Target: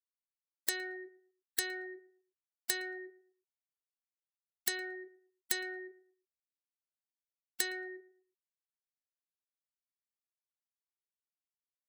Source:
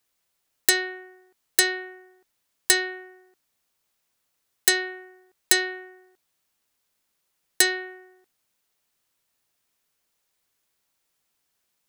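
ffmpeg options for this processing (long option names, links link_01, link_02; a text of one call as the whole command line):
ffmpeg -i in.wav -filter_complex "[0:a]afftfilt=real='re*gte(hypot(re,im),0.0398)':imag='im*gte(hypot(re,im),0.0398)':win_size=1024:overlap=0.75,acompressor=threshold=-33dB:ratio=5,asplit=2[link_01][link_02];[link_02]adelay=113,lowpass=frequency=1400:poles=1,volume=-16dB,asplit=2[link_03][link_04];[link_04]adelay=113,lowpass=frequency=1400:poles=1,volume=0.33,asplit=2[link_05][link_06];[link_06]adelay=113,lowpass=frequency=1400:poles=1,volume=0.33[link_07];[link_03][link_05][link_07]amix=inputs=3:normalize=0[link_08];[link_01][link_08]amix=inputs=2:normalize=0" out.wav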